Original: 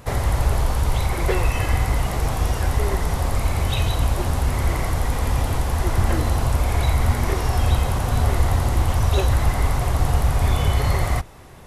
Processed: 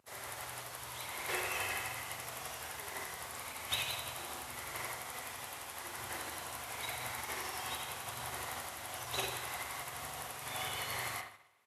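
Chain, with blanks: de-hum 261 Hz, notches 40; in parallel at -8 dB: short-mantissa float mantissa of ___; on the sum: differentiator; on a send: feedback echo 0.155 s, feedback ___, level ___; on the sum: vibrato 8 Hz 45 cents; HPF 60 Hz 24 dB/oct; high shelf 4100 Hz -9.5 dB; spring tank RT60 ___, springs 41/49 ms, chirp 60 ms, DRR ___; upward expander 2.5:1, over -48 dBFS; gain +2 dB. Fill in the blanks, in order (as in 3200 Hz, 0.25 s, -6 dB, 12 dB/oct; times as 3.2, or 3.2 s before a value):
8-bit, 46%, -12 dB, 1.3 s, -2.5 dB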